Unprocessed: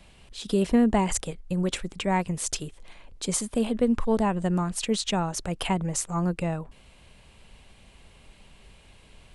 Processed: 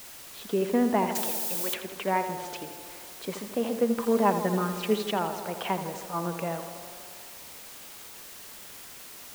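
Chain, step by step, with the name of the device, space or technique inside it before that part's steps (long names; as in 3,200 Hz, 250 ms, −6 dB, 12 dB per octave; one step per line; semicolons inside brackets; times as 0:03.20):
wax cylinder (band-pass filter 300–2,400 Hz; tape wow and flutter; white noise bed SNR 13 dB)
0:01.15–0:01.74: spectral tilt +4 dB per octave
0:03.99–0:05.11: comb filter 5 ms, depth 77%
tape delay 81 ms, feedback 82%, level −8.5 dB, low-pass 2,500 Hz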